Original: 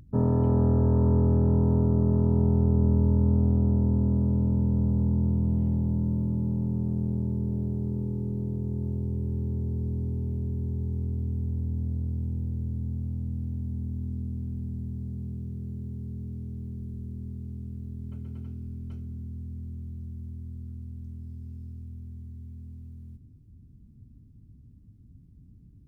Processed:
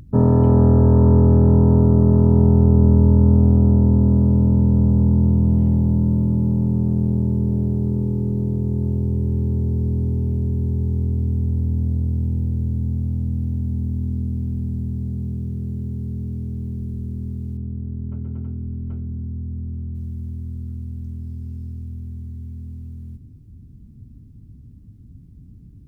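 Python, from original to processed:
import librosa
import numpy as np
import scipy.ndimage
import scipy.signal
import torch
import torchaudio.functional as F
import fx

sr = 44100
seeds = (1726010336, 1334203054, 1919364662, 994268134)

y = fx.lowpass(x, sr, hz=1300.0, slope=12, at=(17.57, 19.95))
y = F.gain(torch.from_numpy(y), 9.0).numpy()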